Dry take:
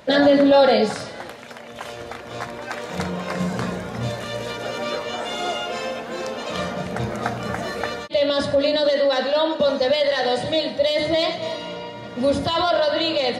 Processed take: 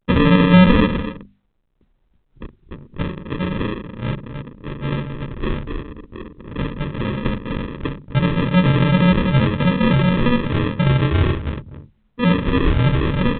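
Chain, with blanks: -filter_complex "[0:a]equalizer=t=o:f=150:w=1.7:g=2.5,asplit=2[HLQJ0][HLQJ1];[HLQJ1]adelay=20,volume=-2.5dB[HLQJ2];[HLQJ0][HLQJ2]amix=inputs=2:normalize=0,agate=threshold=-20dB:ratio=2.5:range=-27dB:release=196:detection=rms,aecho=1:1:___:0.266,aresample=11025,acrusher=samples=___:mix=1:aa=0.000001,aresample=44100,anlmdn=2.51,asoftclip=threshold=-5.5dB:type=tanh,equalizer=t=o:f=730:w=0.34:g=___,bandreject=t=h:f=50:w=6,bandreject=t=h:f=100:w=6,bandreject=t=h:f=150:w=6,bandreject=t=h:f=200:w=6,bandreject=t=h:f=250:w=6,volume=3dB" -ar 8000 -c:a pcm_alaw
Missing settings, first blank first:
246, 15, -13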